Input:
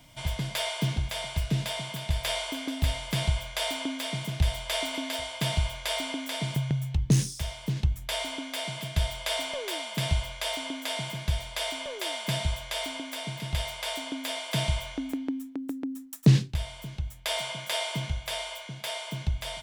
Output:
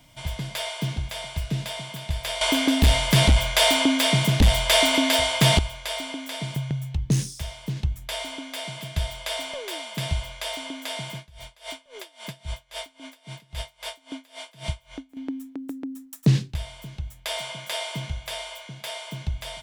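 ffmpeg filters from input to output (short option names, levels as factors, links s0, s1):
-filter_complex "[0:a]asettb=1/sr,asplit=3[s0][s1][s2];[s0]atrim=end=2.414[s3];[s1]atrim=start=2.41:end=5.59,asetpts=PTS-STARTPTS,afade=t=in:d=0.004:c=qsin,afade=t=out:st=3.176:d=0.004:c=qsin,aeval=exprs='0.282*sin(PI/2*2.82*val(0)/0.282)':c=same[s4];[s2]atrim=start=5.586[s5];[s3][s4]acrossfade=d=0.004:c1=hsin:c2=qsin[s6];[s6][s5]acrossfade=d=0.004:c1=qsin:c2=hsin,asettb=1/sr,asplit=3[s7][s8][s9];[s7]atrim=end=11.174[s10];[s8]atrim=start=11.17:end=15.17,asetpts=PTS-STARTPTS,afade=t=in:d=0.004:c=qsin,afade=t=out:st=3.996:d=0.004:c=qsin,aeval=exprs='val(0)*pow(10,-26*(0.5-0.5*cos(2*PI*3.7*n/s))/20)':c=same[s11];[s9]atrim=start=15.166[s12];[s10][s11]acrossfade=d=0.004:c1=hsin:c2=qsin[s13];[s13][s12]acrossfade=d=0.004:c1=qsin:c2=hsin"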